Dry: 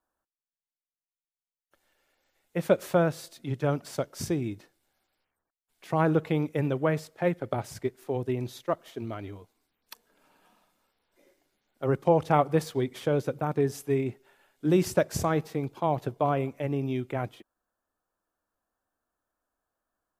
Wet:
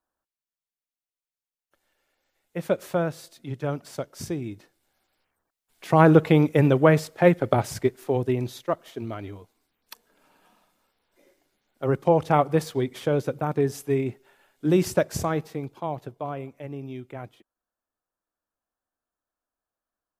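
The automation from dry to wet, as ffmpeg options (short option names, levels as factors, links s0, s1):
-af "volume=2.82,afade=t=in:st=4.46:d=1.68:silence=0.298538,afade=t=out:st=7.54:d=1.15:silence=0.473151,afade=t=out:st=14.88:d=1.26:silence=0.354813"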